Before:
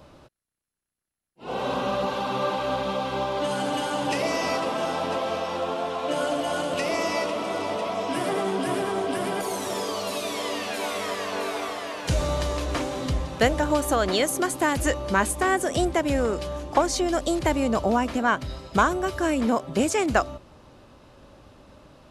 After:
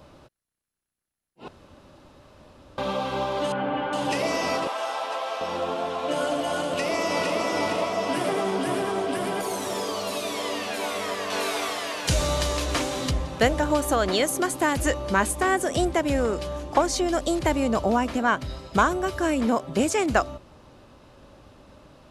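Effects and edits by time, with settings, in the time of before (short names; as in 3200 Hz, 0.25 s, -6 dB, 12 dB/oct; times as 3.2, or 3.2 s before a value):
1.48–2.78 room tone
3.52–3.93 LPF 2600 Hz 24 dB/oct
4.67–5.41 Chebyshev high-pass 770 Hz
6.64–7.39 echo throw 0.46 s, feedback 55%, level -2.5 dB
9.16–10.42 hard clip -20.5 dBFS
11.3–13.11 high shelf 2100 Hz +8 dB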